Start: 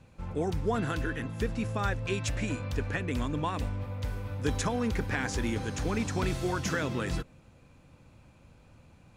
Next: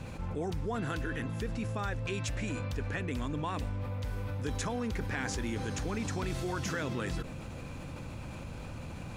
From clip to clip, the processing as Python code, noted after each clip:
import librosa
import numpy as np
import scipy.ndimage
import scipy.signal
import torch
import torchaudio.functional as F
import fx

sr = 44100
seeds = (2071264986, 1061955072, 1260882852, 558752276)

y = fx.env_flatten(x, sr, amount_pct=70)
y = y * librosa.db_to_amplitude(-7.5)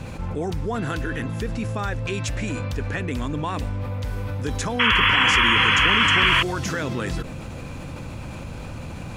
y = fx.spec_paint(x, sr, seeds[0], shape='noise', start_s=4.79, length_s=1.64, low_hz=920.0, high_hz=3400.0, level_db=-26.0)
y = y * librosa.db_to_amplitude(8.0)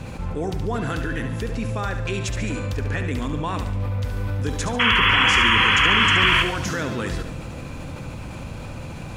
y = fx.echo_feedback(x, sr, ms=71, feedback_pct=46, wet_db=-8.5)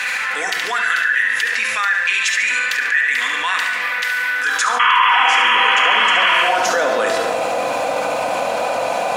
y = fx.filter_sweep_highpass(x, sr, from_hz=1800.0, to_hz=650.0, start_s=4.31, end_s=5.46, q=4.9)
y = fx.room_shoebox(y, sr, seeds[1], volume_m3=2100.0, walls='furnished', distance_m=1.9)
y = fx.env_flatten(y, sr, amount_pct=70)
y = y * librosa.db_to_amplitude(-4.5)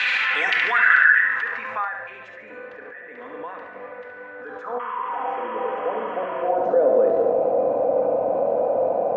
y = fx.filter_sweep_lowpass(x, sr, from_hz=3300.0, to_hz=510.0, start_s=0.21, end_s=2.45, q=2.3)
y = y * librosa.db_to_amplitude(-3.5)